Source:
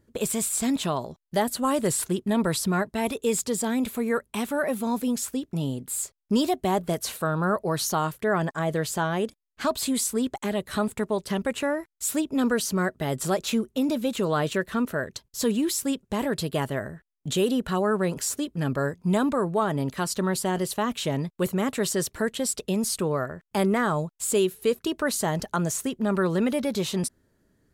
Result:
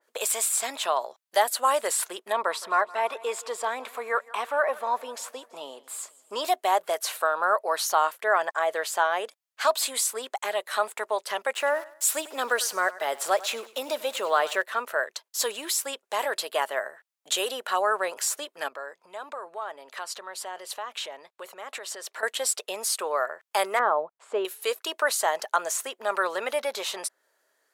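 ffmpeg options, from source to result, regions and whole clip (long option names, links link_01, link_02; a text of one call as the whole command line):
ffmpeg -i in.wav -filter_complex "[0:a]asettb=1/sr,asplit=3[link_01][link_02][link_03];[link_01]atrim=end=2.324[link_04];[link_02]atrim=start=2.32:end=6.45,asetpts=PTS-STARTPTS,afade=type=in:duration=0.004:curve=qsin,afade=type=out:start_time=4.126:duration=0.004:curve=qsin,lowpass=frequency=2100:poles=1,equalizer=frequency=1100:width=5:gain=7,aecho=1:1:166|332|498|664|830:0.0891|0.0526|0.031|0.0183|0.0108,atrim=end_sample=182133[link_05];[link_03]atrim=start=6.446[link_06];[link_04][link_05]acrossfade=duration=0.004:curve1=hsin:curve2=qsin[link_07];[link_07][link_06]acrossfade=duration=0.004:curve1=qsin:curve2=hsin,asettb=1/sr,asplit=3[link_08][link_09][link_10];[link_08]atrim=end=11.544[link_11];[link_09]atrim=start=11.54:end=14.62,asetpts=PTS-STARTPTS,afade=type=in:duration=0.004:curve=qsin,afade=type=out:start_time=3.076:duration=0.004:curve=qsin,lowshelf=frequency=110:gain=11.5,aeval=exprs='val(0)*gte(abs(val(0)),0.0075)':channel_layout=same,aecho=1:1:98|196|294:0.119|0.0416|0.0146,atrim=end_sample=135828[link_12];[link_10]atrim=start=14.616[link_13];[link_11][link_12]acrossfade=duration=0.004:curve1=hsin:curve2=qsin[link_14];[link_14][link_13]acrossfade=duration=0.004:curve1=qsin:curve2=hsin,asettb=1/sr,asplit=3[link_15][link_16][link_17];[link_15]atrim=end=18.684[link_18];[link_16]atrim=start=18.68:end=22.23,asetpts=PTS-STARTPTS,afade=type=in:duration=0.004:curve=qsin,afade=type=out:start_time=3.546:duration=0.004:curve=qsin,lowpass=frequency=3400:poles=1,acompressor=threshold=-33dB:ratio=5:attack=3.2:release=140:knee=1:detection=peak[link_19];[link_17]atrim=start=22.226[link_20];[link_18][link_19]acrossfade=duration=0.004:curve1=hsin:curve2=qsin[link_21];[link_21][link_20]acrossfade=duration=0.004:curve1=qsin:curve2=hsin,asettb=1/sr,asplit=3[link_22][link_23][link_24];[link_22]atrim=end=23.794[link_25];[link_23]atrim=start=23.79:end=24.45,asetpts=PTS-STARTPTS,afade=type=in:duration=0.004:curve=qsin,afade=type=out:start_time=0.656:duration=0.004:curve=qsin,lowpass=1300,equalizer=frequency=170:width=0.45:gain=6.5[link_26];[link_24]atrim=start=24.446[link_27];[link_25][link_26]acrossfade=duration=0.004:curve1=hsin:curve2=qsin[link_28];[link_28][link_27]acrossfade=duration=0.004:curve1=qsin:curve2=hsin,highpass=frequency=600:width=0.5412,highpass=frequency=600:width=1.3066,adynamicequalizer=threshold=0.00562:dfrequency=3000:dqfactor=0.7:tfrequency=3000:tqfactor=0.7:attack=5:release=100:ratio=0.375:range=3:mode=cutabove:tftype=highshelf,volume=5dB" out.wav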